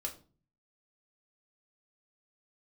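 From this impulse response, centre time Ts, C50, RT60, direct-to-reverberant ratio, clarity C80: 12 ms, 12.5 dB, 0.40 s, 0.5 dB, 17.5 dB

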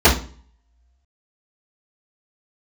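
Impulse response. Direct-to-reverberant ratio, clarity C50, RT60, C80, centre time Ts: −13.5 dB, 9.5 dB, 0.40 s, 15.0 dB, 22 ms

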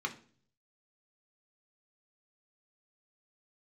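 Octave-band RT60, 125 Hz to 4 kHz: 0.90, 0.65, 0.55, 0.40, 0.40, 0.45 seconds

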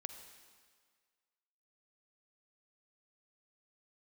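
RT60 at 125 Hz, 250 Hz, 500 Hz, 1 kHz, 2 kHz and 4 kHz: 1.5, 1.6, 1.7, 1.8, 1.7, 1.6 seconds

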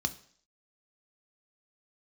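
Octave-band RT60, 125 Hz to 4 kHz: 0.45, 0.55, 0.55, 0.55, 0.55, 0.65 seconds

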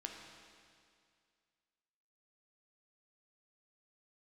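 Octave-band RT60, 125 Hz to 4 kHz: 2.2, 2.2, 2.2, 2.2, 2.2, 2.2 seconds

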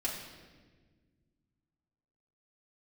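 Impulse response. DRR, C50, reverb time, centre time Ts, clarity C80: −6.5 dB, 4.0 dB, 1.5 s, 49 ms, 6.0 dB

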